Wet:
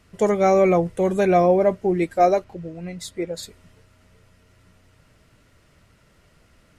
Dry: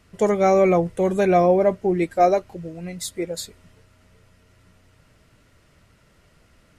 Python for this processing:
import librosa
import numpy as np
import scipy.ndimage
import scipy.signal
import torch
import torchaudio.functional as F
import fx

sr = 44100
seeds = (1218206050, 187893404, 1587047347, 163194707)

y = fx.high_shelf(x, sr, hz=7100.0, db=-11.5, at=(2.44, 3.43))